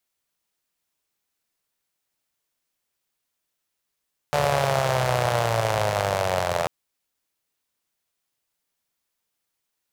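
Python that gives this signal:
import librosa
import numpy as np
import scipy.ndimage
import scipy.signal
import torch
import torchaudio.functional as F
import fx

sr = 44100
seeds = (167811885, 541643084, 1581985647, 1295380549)

y = fx.engine_four_rev(sr, seeds[0], length_s=2.34, rpm=4400, resonances_hz=(120.0, 600.0), end_rpm=2500)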